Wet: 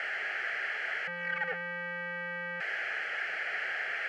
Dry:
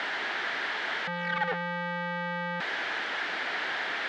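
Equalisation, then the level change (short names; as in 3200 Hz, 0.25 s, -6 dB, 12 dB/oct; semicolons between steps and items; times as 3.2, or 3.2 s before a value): pre-emphasis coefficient 0.8; resonant high shelf 4500 Hz -8.5 dB, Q 1.5; fixed phaser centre 1000 Hz, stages 6; +8.5 dB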